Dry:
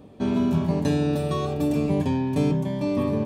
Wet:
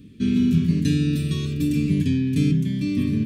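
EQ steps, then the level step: Chebyshev band-stop 250–2300 Hz, order 2; +4.5 dB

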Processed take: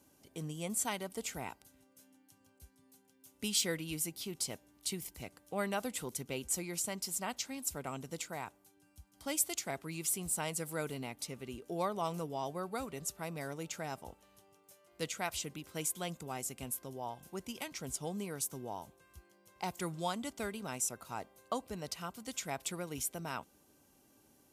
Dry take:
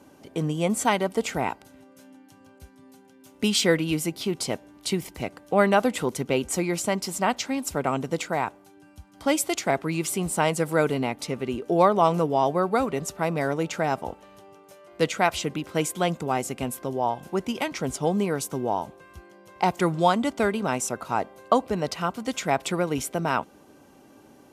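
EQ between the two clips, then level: pre-emphasis filter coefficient 0.8; bass shelf 110 Hz +11.5 dB; -4.0 dB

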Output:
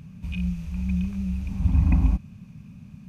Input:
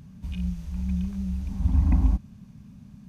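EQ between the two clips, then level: graphic EQ with 31 bands 100 Hz +6 dB, 160 Hz +6 dB, 500 Hz +3 dB, 1.25 kHz +3 dB, 2.5 kHz +12 dB; 0.0 dB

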